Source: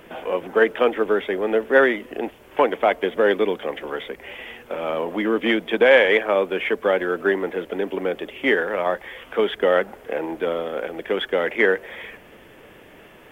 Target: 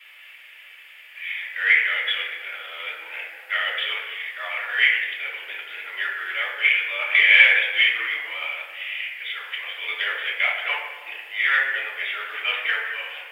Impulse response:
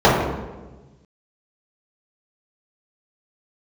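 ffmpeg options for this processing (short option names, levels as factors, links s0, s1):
-filter_complex "[0:a]areverse,highpass=f=2200:t=q:w=2.9,aderivative[s0];[1:a]atrim=start_sample=2205,asetrate=32634,aresample=44100[s1];[s0][s1]afir=irnorm=-1:irlink=0,volume=0.299"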